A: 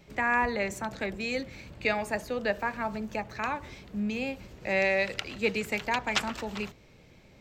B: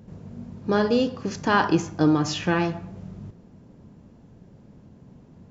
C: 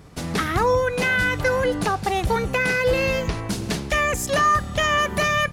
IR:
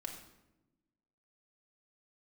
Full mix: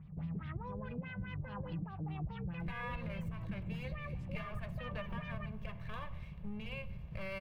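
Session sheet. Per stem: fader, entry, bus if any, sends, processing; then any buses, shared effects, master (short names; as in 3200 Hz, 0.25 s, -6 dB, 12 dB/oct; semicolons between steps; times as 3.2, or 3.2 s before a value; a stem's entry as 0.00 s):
+1.0 dB, 2.50 s, no bus, send -6 dB, minimum comb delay 1.8 ms
-13.0 dB, 0.00 s, bus A, no send, dry
-10.0 dB, 0.00 s, bus A, no send, dry
bus A: 0.0 dB, LFO low-pass sine 4.8 Hz 360–4300 Hz; limiter -23 dBFS, peak gain reduction 8.5 dB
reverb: on, RT60 1.0 s, pre-delay 3 ms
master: EQ curve 110 Hz 0 dB, 160 Hz +7 dB, 260 Hz -14 dB, 390 Hz -18 dB, 1000 Hz -11 dB, 1500 Hz -16 dB, 2700 Hz -11 dB, 4300 Hz -23 dB, 6900 Hz -30 dB, 11000 Hz -19 dB; compressor, threshold -37 dBFS, peak gain reduction 9.5 dB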